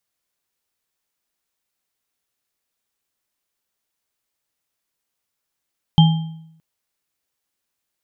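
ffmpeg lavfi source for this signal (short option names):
-f lavfi -i "aevalsrc='0.531*pow(10,-3*t/0.79)*sin(2*PI*161*t)+0.133*pow(10,-3*t/0.54)*sin(2*PI*830*t)+0.15*pow(10,-3*t/0.52)*sin(2*PI*3160*t)':d=0.62:s=44100"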